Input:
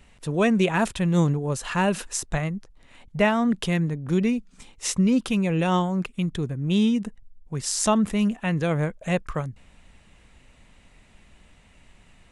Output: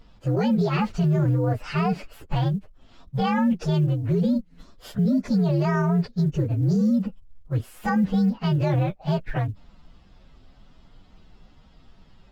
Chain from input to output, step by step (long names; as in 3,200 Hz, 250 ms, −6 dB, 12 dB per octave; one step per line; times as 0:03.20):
partials spread apart or drawn together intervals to 124%
head-to-tape spacing loss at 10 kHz 21 dB
brickwall limiter −22.5 dBFS, peak gain reduction 10.5 dB
floating-point word with a short mantissa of 6 bits
level +7.5 dB